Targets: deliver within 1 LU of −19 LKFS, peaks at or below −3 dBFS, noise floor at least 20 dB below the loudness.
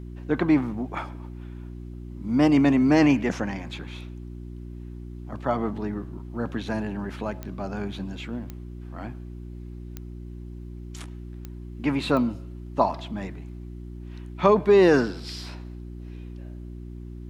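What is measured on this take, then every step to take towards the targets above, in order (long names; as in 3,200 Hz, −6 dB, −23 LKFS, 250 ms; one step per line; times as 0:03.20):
number of clicks 5; mains hum 60 Hz; hum harmonics up to 360 Hz; level of the hum −36 dBFS; integrated loudness −24.5 LKFS; sample peak −3.5 dBFS; target loudness −19.0 LKFS
→ click removal
hum removal 60 Hz, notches 6
level +5.5 dB
brickwall limiter −3 dBFS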